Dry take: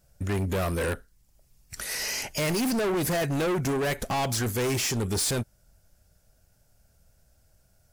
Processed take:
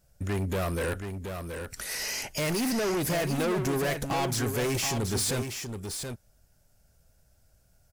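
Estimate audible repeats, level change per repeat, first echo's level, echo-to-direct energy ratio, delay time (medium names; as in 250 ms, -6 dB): 1, no regular repeats, -7.0 dB, -7.0 dB, 726 ms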